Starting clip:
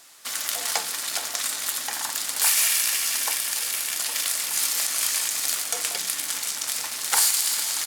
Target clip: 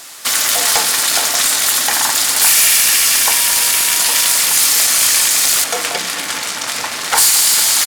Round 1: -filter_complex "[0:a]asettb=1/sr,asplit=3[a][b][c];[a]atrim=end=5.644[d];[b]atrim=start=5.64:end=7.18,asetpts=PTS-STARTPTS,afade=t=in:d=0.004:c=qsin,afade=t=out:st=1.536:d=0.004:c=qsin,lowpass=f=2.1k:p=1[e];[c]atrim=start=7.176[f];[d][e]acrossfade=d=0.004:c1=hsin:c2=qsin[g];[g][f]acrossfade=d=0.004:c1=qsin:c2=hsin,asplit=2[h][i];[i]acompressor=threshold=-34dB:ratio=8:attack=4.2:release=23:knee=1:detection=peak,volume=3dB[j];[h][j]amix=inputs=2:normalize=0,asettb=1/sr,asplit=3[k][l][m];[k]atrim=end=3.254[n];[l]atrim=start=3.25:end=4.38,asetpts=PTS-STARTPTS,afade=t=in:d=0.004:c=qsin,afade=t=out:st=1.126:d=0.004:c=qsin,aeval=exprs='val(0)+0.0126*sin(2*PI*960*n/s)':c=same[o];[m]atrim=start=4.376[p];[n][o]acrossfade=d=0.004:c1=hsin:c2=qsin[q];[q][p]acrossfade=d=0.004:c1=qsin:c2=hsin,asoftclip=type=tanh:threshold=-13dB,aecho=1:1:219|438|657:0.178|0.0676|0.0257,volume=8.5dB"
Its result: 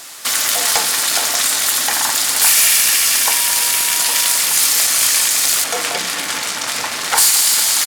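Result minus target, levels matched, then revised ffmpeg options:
compressor: peak gain reduction +6 dB
-filter_complex "[0:a]asettb=1/sr,asplit=3[a][b][c];[a]atrim=end=5.644[d];[b]atrim=start=5.64:end=7.18,asetpts=PTS-STARTPTS,afade=t=in:d=0.004:c=qsin,afade=t=out:st=1.536:d=0.004:c=qsin,lowpass=f=2.1k:p=1[e];[c]atrim=start=7.176[f];[d][e]acrossfade=d=0.004:c1=hsin:c2=qsin[g];[g][f]acrossfade=d=0.004:c1=qsin:c2=hsin,asplit=2[h][i];[i]acompressor=threshold=-27dB:ratio=8:attack=4.2:release=23:knee=1:detection=peak,volume=3dB[j];[h][j]amix=inputs=2:normalize=0,asettb=1/sr,asplit=3[k][l][m];[k]atrim=end=3.254[n];[l]atrim=start=3.25:end=4.38,asetpts=PTS-STARTPTS,afade=t=in:d=0.004:c=qsin,afade=t=out:st=1.126:d=0.004:c=qsin,aeval=exprs='val(0)+0.0126*sin(2*PI*960*n/s)':c=same[o];[m]atrim=start=4.376[p];[n][o]acrossfade=d=0.004:c1=hsin:c2=qsin[q];[q][p]acrossfade=d=0.004:c1=qsin:c2=hsin,asoftclip=type=tanh:threshold=-13dB,aecho=1:1:219|438|657:0.178|0.0676|0.0257,volume=8.5dB"

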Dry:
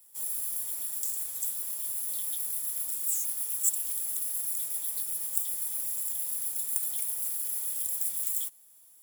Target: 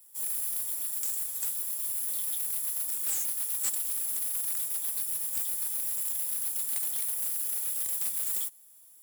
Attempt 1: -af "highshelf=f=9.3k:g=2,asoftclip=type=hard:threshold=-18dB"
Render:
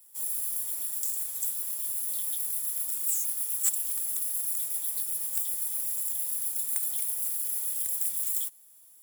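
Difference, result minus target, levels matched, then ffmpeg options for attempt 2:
hard clip: distortion -7 dB
-af "highshelf=f=9.3k:g=2,asoftclip=type=hard:threshold=-25.5dB"

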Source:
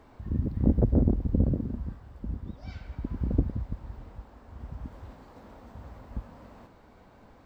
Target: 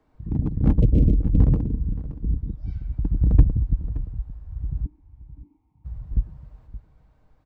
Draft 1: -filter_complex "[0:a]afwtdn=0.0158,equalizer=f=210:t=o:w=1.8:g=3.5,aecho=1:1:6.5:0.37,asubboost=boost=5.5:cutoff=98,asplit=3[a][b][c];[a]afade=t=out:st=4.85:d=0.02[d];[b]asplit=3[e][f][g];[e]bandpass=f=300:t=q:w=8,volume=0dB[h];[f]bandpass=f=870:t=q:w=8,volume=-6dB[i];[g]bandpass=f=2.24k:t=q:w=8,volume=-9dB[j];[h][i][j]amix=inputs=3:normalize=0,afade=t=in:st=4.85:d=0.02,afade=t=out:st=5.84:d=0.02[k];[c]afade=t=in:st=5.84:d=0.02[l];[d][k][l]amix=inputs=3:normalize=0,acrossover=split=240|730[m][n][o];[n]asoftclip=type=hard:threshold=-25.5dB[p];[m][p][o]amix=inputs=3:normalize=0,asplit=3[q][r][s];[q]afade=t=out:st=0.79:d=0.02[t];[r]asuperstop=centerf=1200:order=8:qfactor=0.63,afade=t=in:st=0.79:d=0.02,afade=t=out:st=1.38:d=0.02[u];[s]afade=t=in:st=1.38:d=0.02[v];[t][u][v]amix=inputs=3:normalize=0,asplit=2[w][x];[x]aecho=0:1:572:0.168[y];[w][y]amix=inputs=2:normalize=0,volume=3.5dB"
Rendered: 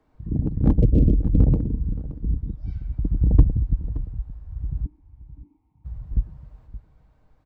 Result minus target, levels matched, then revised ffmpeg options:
hard clip: distortion -6 dB
-filter_complex "[0:a]afwtdn=0.0158,equalizer=f=210:t=o:w=1.8:g=3.5,aecho=1:1:6.5:0.37,asubboost=boost=5.5:cutoff=98,asplit=3[a][b][c];[a]afade=t=out:st=4.85:d=0.02[d];[b]asplit=3[e][f][g];[e]bandpass=f=300:t=q:w=8,volume=0dB[h];[f]bandpass=f=870:t=q:w=8,volume=-6dB[i];[g]bandpass=f=2.24k:t=q:w=8,volume=-9dB[j];[h][i][j]amix=inputs=3:normalize=0,afade=t=in:st=4.85:d=0.02,afade=t=out:st=5.84:d=0.02[k];[c]afade=t=in:st=5.84:d=0.02[l];[d][k][l]amix=inputs=3:normalize=0,acrossover=split=240|730[m][n][o];[n]asoftclip=type=hard:threshold=-32dB[p];[m][p][o]amix=inputs=3:normalize=0,asplit=3[q][r][s];[q]afade=t=out:st=0.79:d=0.02[t];[r]asuperstop=centerf=1200:order=8:qfactor=0.63,afade=t=in:st=0.79:d=0.02,afade=t=out:st=1.38:d=0.02[u];[s]afade=t=in:st=1.38:d=0.02[v];[t][u][v]amix=inputs=3:normalize=0,asplit=2[w][x];[x]aecho=0:1:572:0.168[y];[w][y]amix=inputs=2:normalize=0,volume=3.5dB"

